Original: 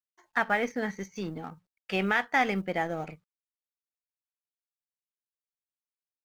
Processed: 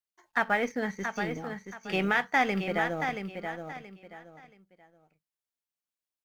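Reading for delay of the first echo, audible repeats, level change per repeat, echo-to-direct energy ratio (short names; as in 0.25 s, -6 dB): 0.677 s, 3, -11.5 dB, -6.5 dB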